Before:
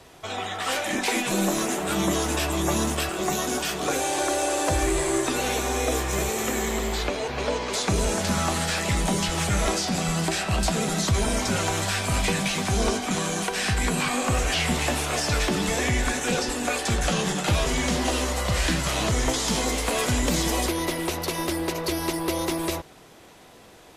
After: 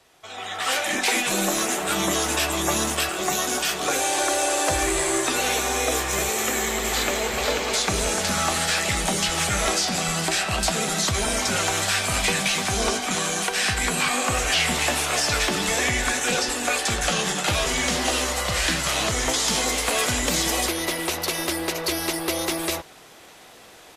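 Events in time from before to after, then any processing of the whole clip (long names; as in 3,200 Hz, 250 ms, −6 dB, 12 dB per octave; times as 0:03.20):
0:06.35–0:07.28: delay throw 490 ms, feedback 45%, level −3.5 dB
whole clip: low-shelf EQ 480 Hz −10 dB; notch filter 990 Hz, Q 24; automatic gain control gain up to 11.5 dB; level −6 dB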